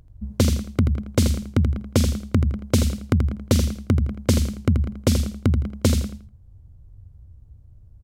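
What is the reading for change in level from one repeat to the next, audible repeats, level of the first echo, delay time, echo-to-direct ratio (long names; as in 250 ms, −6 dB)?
−11.5 dB, 3, −8.0 dB, 82 ms, −7.5 dB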